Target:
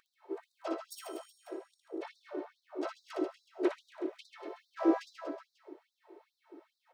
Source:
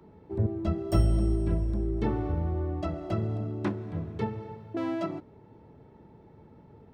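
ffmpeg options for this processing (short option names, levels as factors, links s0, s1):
-filter_complex "[0:a]asubboost=boost=10:cutoff=230,acompressor=threshold=0.141:ratio=6,aeval=exprs='(tanh(7.08*val(0)+0.6)-tanh(0.6))/7.08':c=same,highpass=f=54:w=0.5412,highpass=f=54:w=1.3066,aecho=1:1:3.2:0.94,bandreject=f=68.14:t=h:w=4,bandreject=f=136.28:t=h:w=4,bandreject=f=204.42:t=h:w=4,bandreject=f=272.56:t=h:w=4,bandreject=f=340.7:t=h:w=4,bandreject=f=408.84:t=h:w=4,bandreject=f=476.98:t=h:w=4,bandreject=f=545.12:t=h:w=4,bandreject=f=613.26:t=h:w=4,bandreject=f=681.4:t=h:w=4,bandreject=f=749.54:t=h:w=4,bandreject=f=817.68:t=h:w=4,bandreject=f=885.82:t=h:w=4,asplit=2[s0][s1];[s1]aecho=0:1:71:0.141[s2];[s0][s2]amix=inputs=2:normalize=0,asplit=3[s3][s4][s5];[s4]asetrate=35002,aresample=44100,atempo=1.25992,volume=0.447[s6];[s5]asetrate=52444,aresample=44100,atempo=0.840896,volume=0.282[s7];[s3][s6][s7]amix=inputs=3:normalize=0,asplit=2[s8][s9];[s9]aecho=0:1:60|138|239.4|371.2|542.6:0.631|0.398|0.251|0.158|0.1[s10];[s8][s10]amix=inputs=2:normalize=0,afftfilt=real='re*gte(b*sr/1024,290*pow(3700/290,0.5+0.5*sin(2*PI*2.4*pts/sr)))':imag='im*gte(b*sr/1024,290*pow(3700/290,0.5+0.5*sin(2*PI*2.4*pts/sr)))':win_size=1024:overlap=0.75"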